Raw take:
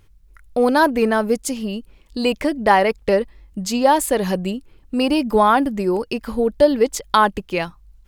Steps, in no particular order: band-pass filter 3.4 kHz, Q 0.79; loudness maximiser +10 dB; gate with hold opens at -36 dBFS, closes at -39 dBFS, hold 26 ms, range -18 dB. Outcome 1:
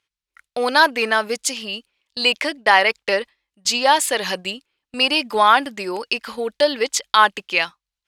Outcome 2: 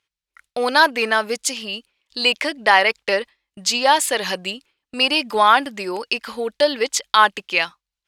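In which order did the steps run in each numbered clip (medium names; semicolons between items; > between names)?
band-pass filter > gate with hold > loudness maximiser; band-pass filter > loudness maximiser > gate with hold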